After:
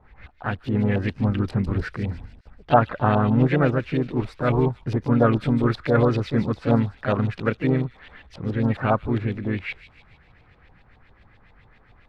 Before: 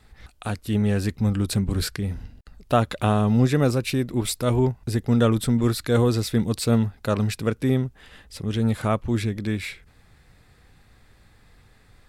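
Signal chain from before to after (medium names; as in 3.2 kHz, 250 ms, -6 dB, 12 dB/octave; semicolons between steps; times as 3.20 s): LFO low-pass saw up 7.3 Hz 690–3100 Hz; feedback echo behind a high-pass 148 ms, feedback 52%, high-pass 4.1 kHz, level -6.5 dB; harmony voices +3 st -7 dB; trim -1 dB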